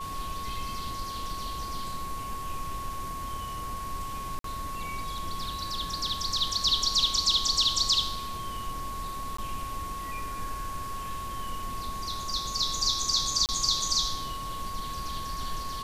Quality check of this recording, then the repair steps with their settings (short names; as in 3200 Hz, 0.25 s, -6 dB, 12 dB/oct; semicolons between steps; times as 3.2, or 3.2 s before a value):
tone 1100 Hz -35 dBFS
4.39–4.44 gap 53 ms
9.37–9.38 gap 14 ms
13.46–13.49 gap 28 ms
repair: notch 1100 Hz, Q 30; interpolate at 4.39, 53 ms; interpolate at 9.37, 14 ms; interpolate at 13.46, 28 ms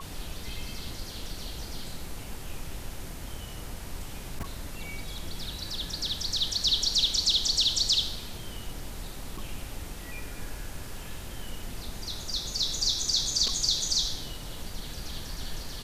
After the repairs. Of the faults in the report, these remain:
none